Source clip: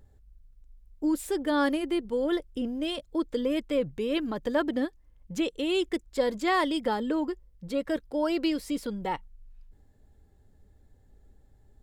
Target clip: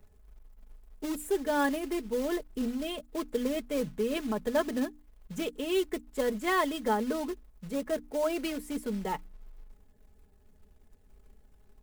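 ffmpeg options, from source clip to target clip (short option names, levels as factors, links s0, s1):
-filter_complex "[0:a]acrossover=split=130|890|6300[s0][s1][s2][s3];[s2]adynamicsmooth=sensitivity=2.5:basefreq=2400[s4];[s0][s1][s4][s3]amix=inputs=4:normalize=0,acrusher=bits=4:mode=log:mix=0:aa=0.000001,bandreject=f=60:t=h:w=6,bandreject=f=120:t=h:w=6,bandreject=f=180:t=h:w=6,bandreject=f=240:t=h:w=6,bandreject=f=300:t=h:w=6,aecho=1:1:4.7:0.54,volume=0.794"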